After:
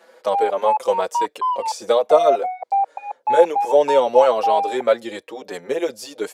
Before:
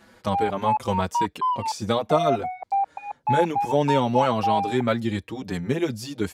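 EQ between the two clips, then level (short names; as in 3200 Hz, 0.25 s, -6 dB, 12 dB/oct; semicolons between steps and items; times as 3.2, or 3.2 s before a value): dynamic EQ 8600 Hz, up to +4 dB, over -49 dBFS, Q 0.82; resonant high-pass 510 Hz, resonance Q 3.4; 0.0 dB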